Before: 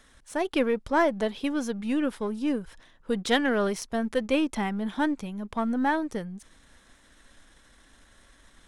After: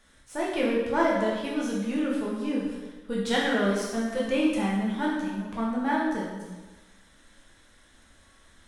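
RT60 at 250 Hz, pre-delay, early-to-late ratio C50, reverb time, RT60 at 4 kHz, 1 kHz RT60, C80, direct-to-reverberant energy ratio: 1.2 s, 5 ms, 1.0 dB, 1.2 s, 1.1 s, 1.2 s, 3.0 dB, -5.0 dB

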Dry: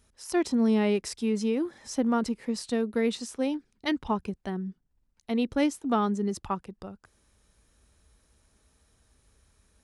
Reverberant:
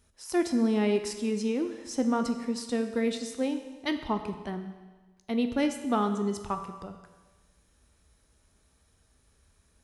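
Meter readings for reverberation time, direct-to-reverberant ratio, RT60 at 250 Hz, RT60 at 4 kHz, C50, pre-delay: 1.3 s, 6.5 dB, 1.3 s, 1.3 s, 9.0 dB, 12 ms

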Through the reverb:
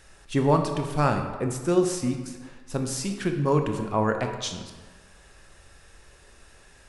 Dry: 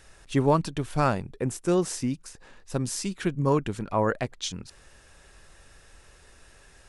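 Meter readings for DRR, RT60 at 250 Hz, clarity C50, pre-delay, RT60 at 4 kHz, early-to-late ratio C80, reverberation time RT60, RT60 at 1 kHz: 4.5 dB, 1.3 s, 6.5 dB, 19 ms, 0.90 s, 8.5 dB, 1.4 s, 1.4 s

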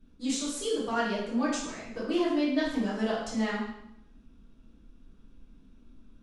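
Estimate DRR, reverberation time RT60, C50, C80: -9.5 dB, 0.80 s, 2.0 dB, 5.0 dB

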